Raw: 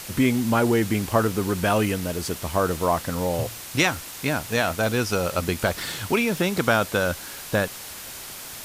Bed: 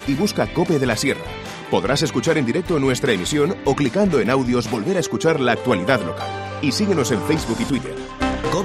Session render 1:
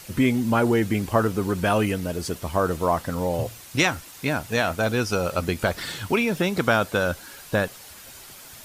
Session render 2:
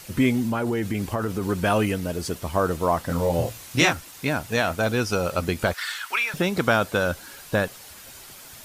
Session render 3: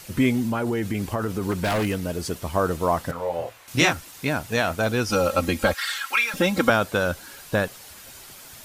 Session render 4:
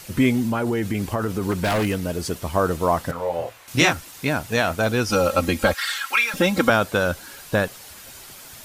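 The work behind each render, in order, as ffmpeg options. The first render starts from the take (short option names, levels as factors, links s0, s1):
-af "afftdn=nr=8:nf=-38"
-filter_complex "[0:a]asettb=1/sr,asplit=3[s0][s1][s2];[s0]atrim=end=0.434[s3];[s1]atrim=start=0.43:end=1.49,asetpts=PTS-STARTPTS,afade=t=in:d=0.004:c=qsin,afade=t=out:st=1.056:d=0.004:c=qsin,acompressor=threshold=0.0891:ratio=6:attack=3.2:release=140:knee=1:detection=peak[s4];[s2]atrim=start=1.486[s5];[s3][s4]acrossfade=d=0.004:c1=hsin:c2=qsin[s6];[s6][s5]acrossfade=d=0.004:c1=qsin:c2=hsin,asettb=1/sr,asplit=3[s7][s8][s9];[s7]atrim=end=3.074[s10];[s8]atrim=start=3.07:end=3.93,asetpts=PTS-STARTPTS,afade=t=in:d=0.004:c=qsin,afade=t=out:st=0.856:d=0.004:c=qsin,asplit=2[s11][s12];[s12]adelay=24,volume=0.75[s13];[s11][s13]amix=inputs=2:normalize=0,atrim=end_sample=37926[s14];[s9]atrim=start=3.926[s15];[s10][s14]acrossfade=d=0.004:c1=hsin:c2=qsin[s16];[s16][s15]acrossfade=d=0.004:c1=qsin:c2=hsin,asettb=1/sr,asplit=3[s17][s18][s19];[s17]atrim=end=5.744[s20];[s18]atrim=start=5.74:end=6.34,asetpts=PTS-STARTPTS,afade=t=in:d=0.004:c=qsin,afade=t=out:st=0.596:d=0.004:c=qsin,highpass=f=1400:t=q:w=1.9[s21];[s19]atrim=start=6.336[s22];[s20][s21]acrossfade=d=0.004:c1=hsin:c2=qsin[s23];[s23][s22]acrossfade=d=0.004:c1=qsin:c2=hsin"
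-filter_complex "[0:a]asettb=1/sr,asplit=3[s0][s1][s2];[s0]atrim=end=1.514[s3];[s1]atrim=start=1.51:end=2.21,asetpts=PTS-STARTPTS,afade=t=in:d=0.004:c=qsin,afade=t=out:st=0.696:d=0.004:c=qsin,aeval=exprs='0.126*(abs(mod(val(0)/0.126+3,4)-2)-1)':c=same[s4];[s2]atrim=start=2.206[s5];[s3][s4]acrossfade=d=0.004:c1=hsin:c2=qsin[s6];[s6][s5]acrossfade=d=0.004:c1=qsin:c2=hsin,asettb=1/sr,asplit=3[s7][s8][s9];[s7]atrim=end=3.114[s10];[s8]atrim=start=3.11:end=3.68,asetpts=PTS-STARTPTS,afade=t=in:d=0.004:c=qsin,afade=t=out:st=0.566:d=0.004:c=qsin,acrossover=split=470 2800:gain=0.158 1 0.224[s11][s12][s13];[s11][s12][s13]amix=inputs=3:normalize=0[s14];[s9]atrim=start=3.676[s15];[s10][s14]acrossfade=d=0.004:c1=hsin:c2=qsin[s16];[s16][s15]acrossfade=d=0.004:c1=qsin:c2=hsin,asettb=1/sr,asplit=3[s17][s18][s19];[s17]atrim=end=5.084[s20];[s18]atrim=start=5.08:end=6.7,asetpts=PTS-STARTPTS,afade=t=in:d=0.004:c=qsin,afade=t=out:st=1.616:d=0.004:c=qsin,aecho=1:1:3.7:0.96,atrim=end_sample=71442[s21];[s19]atrim=start=6.696[s22];[s20][s21]acrossfade=d=0.004:c1=hsin:c2=qsin[s23];[s23][s22]acrossfade=d=0.004:c1=qsin:c2=hsin"
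-af "volume=1.26,alimiter=limit=0.708:level=0:latency=1"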